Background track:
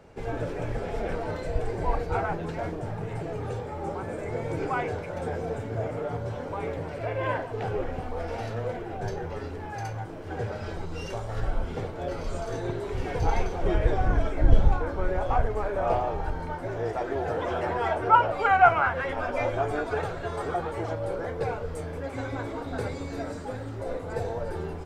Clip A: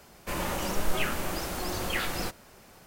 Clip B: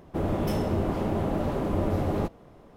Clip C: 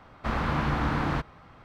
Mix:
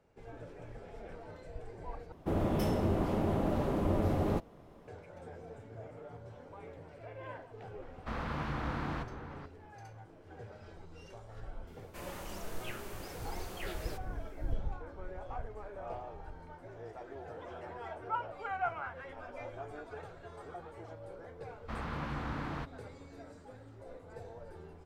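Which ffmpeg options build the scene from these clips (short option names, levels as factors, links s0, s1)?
-filter_complex "[3:a]asplit=2[s0][s1];[0:a]volume=0.141[s2];[s0]asplit=2[s3][s4];[s4]adelay=484,volume=0.316,highshelf=f=4000:g=-10.9[s5];[s3][s5]amix=inputs=2:normalize=0[s6];[s2]asplit=2[s7][s8];[s7]atrim=end=2.124[s9];[2:a]atrim=end=2.76,asetpts=PTS-STARTPTS,volume=0.631[s10];[s8]atrim=start=4.876[s11];[s6]atrim=end=1.64,asetpts=PTS-STARTPTS,volume=0.316,afade=t=in:d=0.004:c=hsin,afade=t=out:st=1.636:d=0.004:c=hsin,adelay=7820[s12];[1:a]atrim=end=2.86,asetpts=PTS-STARTPTS,volume=0.2,afade=t=in:d=0.004:c=hsin,afade=t=out:st=2.856:d=0.004:c=hsin,adelay=11670[s13];[s1]atrim=end=1.64,asetpts=PTS-STARTPTS,volume=0.266,afade=t=in:d=0.004:c=hsin,afade=t=out:st=1.636:d=0.004:c=hsin,adelay=21440[s14];[s9][s10]acrossfade=d=0.004:c1=hsin:c2=hsin[s15];[s15][s11]acrossfade=d=0.004:c1=hsin:c2=hsin[s16];[s16][s12][s13][s14]amix=inputs=4:normalize=0"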